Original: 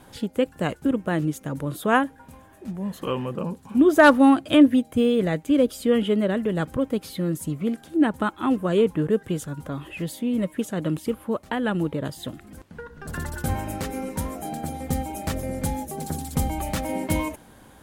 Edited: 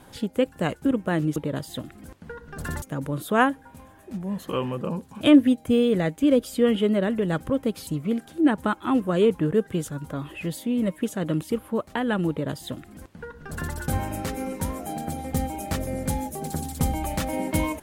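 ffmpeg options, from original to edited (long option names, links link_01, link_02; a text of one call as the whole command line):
ffmpeg -i in.wav -filter_complex "[0:a]asplit=5[link_01][link_02][link_03][link_04][link_05];[link_01]atrim=end=1.362[link_06];[link_02]atrim=start=11.848:end=13.312[link_07];[link_03]atrim=start=1.358:end=3.752[link_08];[link_04]atrim=start=4.478:end=7.142[link_09];[link_05]atrim=start=7.428[link_10];[link_06][link_07]acrossfade=duration=0.004:curve1=hsin:curve2=hsin[link_11];[link_11][link_08]acrossfade=duration=0.004:curve1=hsin:curve2=hsin[link_12];[link_12][link_09]acrossfade=duration=0.004:curve1=hsin:curve2=hsin[link_13];[link_13][link_10]acrossfade=duration=0.004:curve1=hsin:curve2=hsin" out.wav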